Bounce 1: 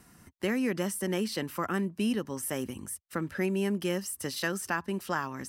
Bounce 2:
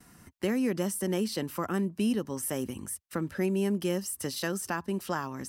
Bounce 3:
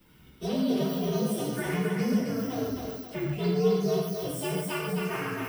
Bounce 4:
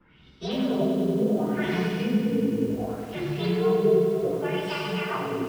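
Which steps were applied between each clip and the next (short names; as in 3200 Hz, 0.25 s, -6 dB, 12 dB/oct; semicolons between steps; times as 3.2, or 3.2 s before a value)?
gate with hold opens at -49 dBFS; dynamic EQ 1900 Hz, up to -6 dB, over -46 dBFS, Q 0.82; gain +1.5 dB
inharmonic rescaling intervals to 126%; thinning echo 0.265 s, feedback 43%, high-pass 350 Hz, level -3 dB; non-linear reverb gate 0.17 s flat, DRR -2 dB
LFO low-pass sine 0.68 Hz 330–4600 Hz; spectral delete 1.86–2.7, 520–2300 Hz; lo-fi delay 96 ms, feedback 80%, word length 8-bit, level -6 dB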